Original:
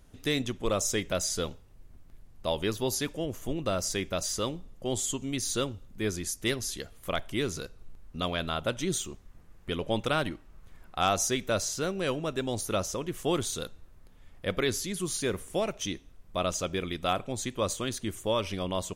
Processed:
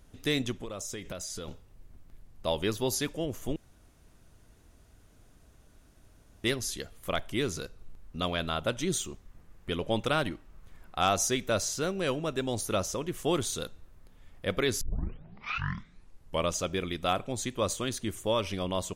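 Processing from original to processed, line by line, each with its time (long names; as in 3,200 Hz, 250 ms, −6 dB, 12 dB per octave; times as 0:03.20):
0:00.57–0:01.48: downward compressor 16 to 1, threshold −34 dBFS
0:03.56–0:06.44: fill with room tone
0:14.81: tape start 1.75 s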